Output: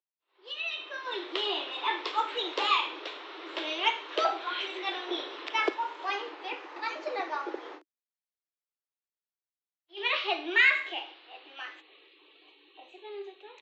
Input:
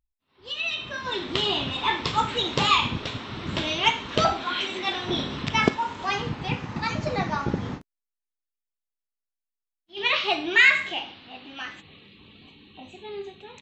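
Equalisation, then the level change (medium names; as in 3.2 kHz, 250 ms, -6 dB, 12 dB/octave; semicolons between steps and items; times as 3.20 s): steep high-pass 310 Hz 96 dB/octave; low-pass 4.2 kHz 12 dB/octave; -5.0 dB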